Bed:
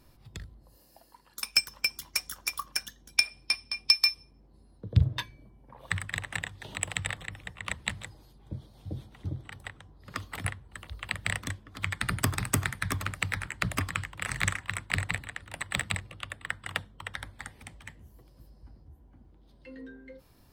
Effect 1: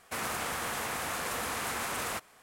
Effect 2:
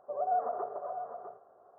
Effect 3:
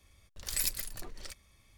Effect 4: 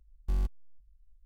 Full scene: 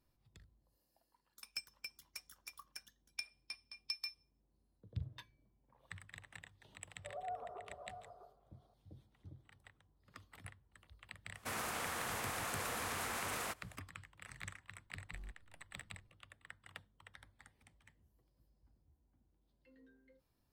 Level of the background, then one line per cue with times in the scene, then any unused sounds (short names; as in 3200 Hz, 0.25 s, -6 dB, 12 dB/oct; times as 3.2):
bed -20 dB
6.96 add 2 -14 dB
11.34 add 1 -6.5 dB
14.85 add 4 -16 dB + compressor 1.5:1, threshold -39 dBFS
not used: 3